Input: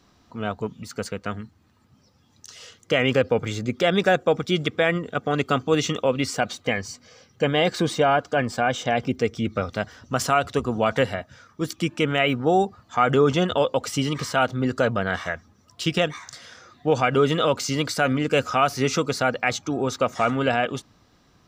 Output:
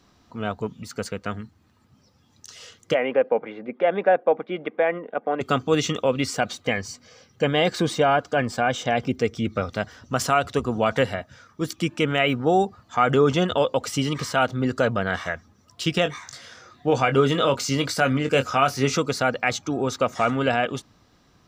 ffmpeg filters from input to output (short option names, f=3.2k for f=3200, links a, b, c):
-filter_complex "[0:a]asplit=3[a][b][c];[a]afade=t=out:st=2.93:d=0.02[d];[b]highpass=f=250:w=0.5412,highpass=f=250:w=1.3066,equalizer=f=260:t=q:w=4:g=-4,equalizer=f=370:t=q:w=4:g=-5,equalizer=f=570:t=q:w=4:g=3,equalizer=f=830:t=q:w=4:g=4,equalizer=f=1.3k:t=q:w=4:g=-8,equalizer=f=1.8k:t=q:w=4:g=-3,lowpass=f=2.1k:w=0.5412,lowpass=f=2.1k:w=1.3066,afade=t=in:st=2.93:d=0.02,afade=t=out:st=5.4:d=0.02[e];[c]afade=t=in:st=5.4:d=0.02[f];[d][e][f]amix=inputs=3:normalize=0,asettb=1/sr,asplit=3[g][h][i];[g]atrim=end=16.034[j];[h]atrim=start=16.03:end=18.97,asetpts=PTS-STARTPTS,afade=t=in:d=0.004:c=qsin,afade=t=out:st=2.936:d=0.004:c=qsin,asplit=2[k][l];[l]adelay=22,volume=-9dB[m];[k][m]amix=inputs=2:normalize=0,atrim=end_sample=129654[n];[i]atrim=start=18.966[o];[j][n]acrossfade=d=0.004:c1=hsin:c2=qsin[p];[p][o]acrossfade=d=0.004:c1=qsin:c2=hsin"